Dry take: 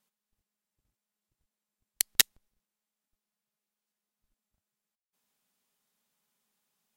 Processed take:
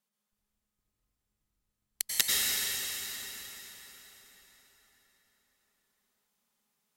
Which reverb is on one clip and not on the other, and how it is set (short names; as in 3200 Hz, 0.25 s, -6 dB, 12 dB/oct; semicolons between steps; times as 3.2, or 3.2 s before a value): plate-style reverb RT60 5 s, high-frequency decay 0.75×, pre-delay 80 ms, DRR -6.5 dB; gain -6 dB